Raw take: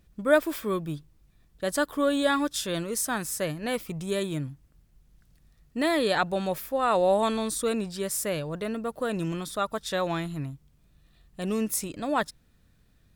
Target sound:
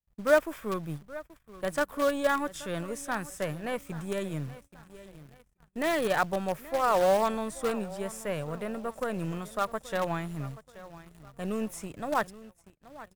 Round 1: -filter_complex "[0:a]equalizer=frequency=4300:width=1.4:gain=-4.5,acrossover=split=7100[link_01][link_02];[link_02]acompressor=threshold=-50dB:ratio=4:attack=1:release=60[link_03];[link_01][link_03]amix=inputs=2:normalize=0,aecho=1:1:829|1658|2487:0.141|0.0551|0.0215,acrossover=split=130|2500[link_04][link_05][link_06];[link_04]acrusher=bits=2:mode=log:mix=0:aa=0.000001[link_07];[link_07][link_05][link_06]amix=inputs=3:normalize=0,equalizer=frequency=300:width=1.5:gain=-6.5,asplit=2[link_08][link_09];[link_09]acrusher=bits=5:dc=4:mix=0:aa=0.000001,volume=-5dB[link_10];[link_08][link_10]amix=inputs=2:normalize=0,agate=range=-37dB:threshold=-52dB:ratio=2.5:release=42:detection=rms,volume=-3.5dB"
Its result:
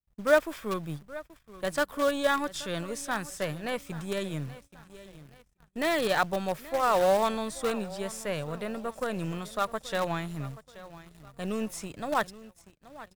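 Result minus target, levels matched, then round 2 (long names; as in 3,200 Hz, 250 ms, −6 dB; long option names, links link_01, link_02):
4,000 Hz band +4.0 dB
-filter_complex "[0:a]equalizer=frequency=4300:width=1.4:gain=-14.5,acrossover=split=7100[link_01][link_02];[link_02]acompressor=threshold=-50dB:ratio=4:attack=1:release=60[link_03];[link_01][link_03]amix=inputs=2:normalize=0,aecho=1:1:829|1658|2487:0.141|0.0551|0.0215,acrossover=split=130|2500[link_04][link_05][link_06];[link_04]acrusher=bits=2:mode=log:mix=0:aa=0.000001[link_07];[link_07][link_05][link_06]amix=inputs=3:normalize=0,equalizer=frequency=300:width=1.5:gain=-6.5,asplit=2[link_08][link_09];[link_09]acrusher=bits=5:dc=4:mix=0:aa=0.000001,volume=-5dB[link_10];[link_08][link_10]amix=inputs=2:normalize=0,agate=range=-37dB:threshold=-52dB:ratio=2.5:release=42:detection=rms,volume=-3.5dB"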